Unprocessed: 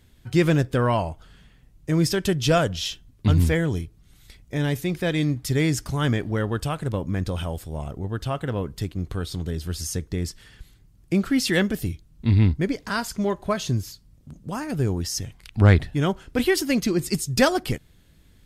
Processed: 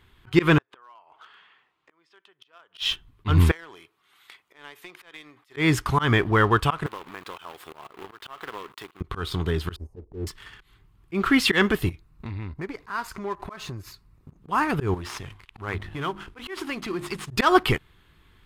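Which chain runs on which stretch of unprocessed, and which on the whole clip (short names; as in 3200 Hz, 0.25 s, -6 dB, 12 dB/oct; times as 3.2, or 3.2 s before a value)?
0.58–2.82 compressor 3:1, threshold -23 dBFS + flipped gate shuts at -19 dBFS, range -27 dB + BPF 570–5000 Hz
3.51–5.57 HPF 540 Hz + compressor 8:1, threshold -44 dBFS
6.86–9.01 HPF 360 Hz + compressor, threshold -40 dBFS + companded quantiser 4-bit
9.76–10.27 inverse Chebyshev low-pass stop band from 1300 Hz + bell 140 Hz -13.5 dB 0.81 oct
11.89–14.42 bell 3200 Hz -13 dB 0.22 oct + compressor 5:1, threshold -34 dBFS
14.94–17.31 CVSD 64 kbps + notches 50/100/150/200/250/300/350 Hz + compressor 3:1, threshold -35 dBFS
whole clip: EQ curve 110 Hz 0 dB, 250 Hz -3 dB, 390 Hz +6 dB, 560 Hz -3 dB, 1100 Hz +15 dB, 1600 Hz +8 dB, 3200 Hz +7 dB, 5800 Hz -7 dB, 14000 Hz -3 dB; sample leveller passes 1; auto swell 0.139 s; gain -1 dB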